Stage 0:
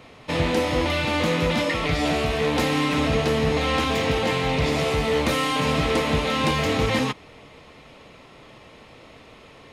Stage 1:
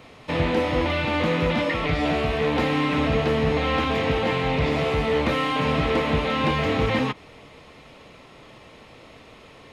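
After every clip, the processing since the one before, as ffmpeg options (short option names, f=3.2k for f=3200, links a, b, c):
-filter_complex "[0:a]acrossover=split=3700[a][b];[b]acompressor=threshold=-50dB:ratio=4:attack=1:release=60[c];[a][c]amix=inputs=2:normalize=0"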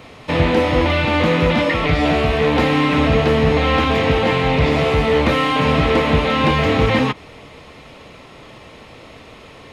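-af "equalizer=f=77:t=o:w=0.77:g=2.5,volume=6.5dB"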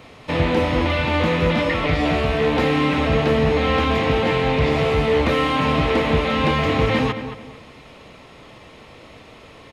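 -filter_complex "[0:a]asplit=2[a][b];[b]adelay=222,lowpass=f=3.2k:p=1,volume=-10dB,asplit=2[c][d];[d]adelay=222,lowpass=f=3.2k:p=1,volume=0.31,asplit=2[e][f];[f]adelay=222,lowpass=f=3.2k:p=1,volume=0.31[g];[a][c][e][g]amix=inputs=4:normalize=0,volume=-3.5dB"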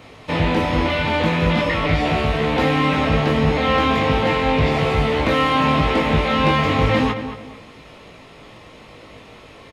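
-filter_complex "[0:a]asplit=2[a][b];[b]adelay=19,volume=-5dB[c];[a][c]amix=inputs=2:normalize=0"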